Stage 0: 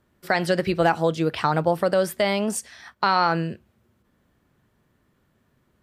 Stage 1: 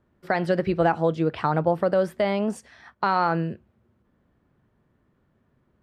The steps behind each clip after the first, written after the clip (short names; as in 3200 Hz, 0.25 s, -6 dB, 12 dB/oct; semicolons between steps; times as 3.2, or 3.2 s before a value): LPF 1300 Hz 6 dB/oct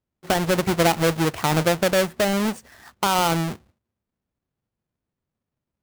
half-waves squared off; gate with hold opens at -51 dBFS; gain -1.5 dB